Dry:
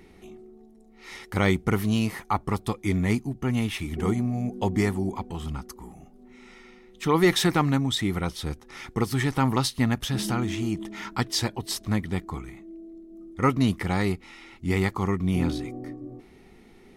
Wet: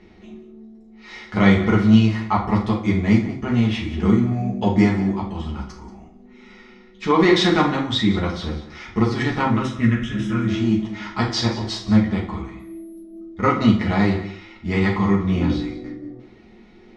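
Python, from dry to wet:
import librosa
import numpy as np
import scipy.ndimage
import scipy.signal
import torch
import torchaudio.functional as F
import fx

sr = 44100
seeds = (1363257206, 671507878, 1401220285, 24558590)

p1 = fx.fixed_phaser(x, sr, hz=1900.0, stages=4, at=(9.46, 10.48))
p2 = fx.backlash(p1, sr, play_db=-24.5)
p3 = p1 + (p2 * librosa.db_to_amplitude(-9.5))
p4 = fx.resample_bad(p3, sr, factor=4, down='none', up='zero_stuff', at=(12.59, 13.02))
p5 = scipy.signal.sosfilt(scipy.signal.butter(4, 5600.0, 'lowpass', fs=sr, output='sos'), p4)
p6 = p5 + 10.0 ** (-15.5 / 20.0) * np.pad(p5, (int(183 * sr / 1000.0), 0))[:len(p5)]
p7 = fx.rev_fdn(p6, sr, rt60_s=0.57, lf_ratio=0.85, hf_ratio=0.75, size_ms=28.0, drr_db=-3.5)
y = p7 * librosa.db_to_amplitude(-1.5)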